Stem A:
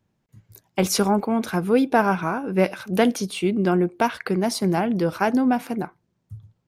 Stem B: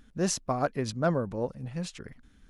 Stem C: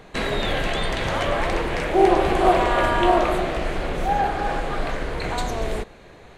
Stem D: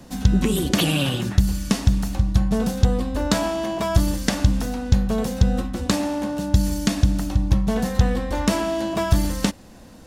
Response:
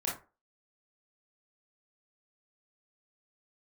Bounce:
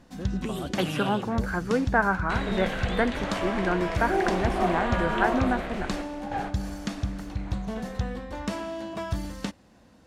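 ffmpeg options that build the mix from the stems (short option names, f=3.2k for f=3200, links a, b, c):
-filter_complex "[0:a]highshelf=f=2.5k:t=q:w=3:g=-13,volume=-8dB,asplit=2[a][b];[1:a]lowpass=2.1k,acompressor=threshold=-31dB:ratio=6,volume=-5dB[c];[2:a]lowpass=10k,adelay=2150,volume=-11dB,asplit=2[d][e];[e]volume=-20dB[f];[3:a]highpass=49,highshelf=f=8.9k:g=-11,volume=-11dB[g];[b]apad=whole_len=375789[h];[d][h]sidechaingate=range=-14dB:threshold=-54dB:ratio=16:detection=peak[i];[4:a]atrim=start_sample=2205[j];[f][j]afir=irnorm=-1:irlink=0[k];[a][c][i][g][k]amix=inputs=5:normalize=0,equalizer=f=1.6k:w=0.62:g=2.5"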